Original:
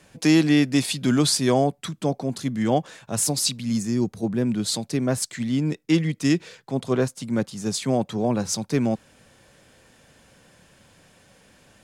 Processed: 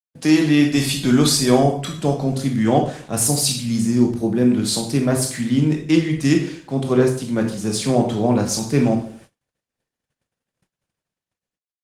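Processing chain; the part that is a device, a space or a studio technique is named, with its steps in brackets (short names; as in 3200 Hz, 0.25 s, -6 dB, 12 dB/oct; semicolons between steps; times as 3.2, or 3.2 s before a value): speakerphone in a meeting room (reverb RT60 0.50 s, pre-delay 17 ms, DRR 2 dB; AGC gain up to 4.5 dB; gate -43 dBFS, range -55 dB; Opus 24 kbps 48000 Hz)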